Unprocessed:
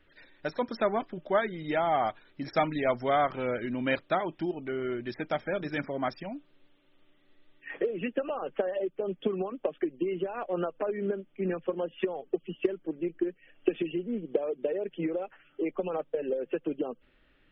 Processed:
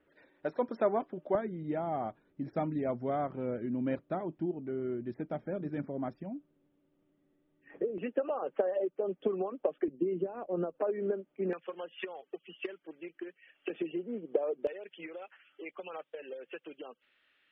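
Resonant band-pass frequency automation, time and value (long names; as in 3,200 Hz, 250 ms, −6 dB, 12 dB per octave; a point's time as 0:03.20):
resonant band-pass, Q 0.67
460 Hz
from 0:01.35 190 Hz
from 0:07.98 600 Hz
from 0:09.88 250 Hz
from 0:10.74 570 Hz
from 0:11.53 2,300 Hz
from 0:13.70 760 Hz
from 0:14.67 3,000 Hz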